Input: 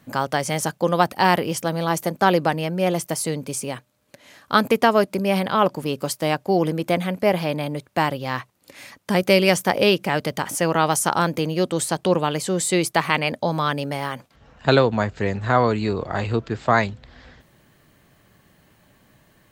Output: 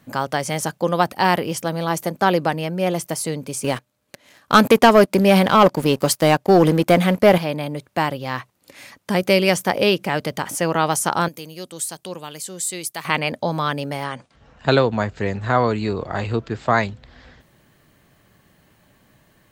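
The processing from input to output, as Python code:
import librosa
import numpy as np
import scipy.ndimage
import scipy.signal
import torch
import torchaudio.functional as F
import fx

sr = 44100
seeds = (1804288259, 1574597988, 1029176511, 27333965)

y = fx.leveller(x, sr, passes=2, at=(3.64, 7.38))
y = fx.pre_emphasis(y, sr, coefficient=0.8, at=(11.28, 13.05))
y = fx.brickwall_lowpass(y, sr, high_hz=10000.0, at=(14.03, 14.9), fade=0.02)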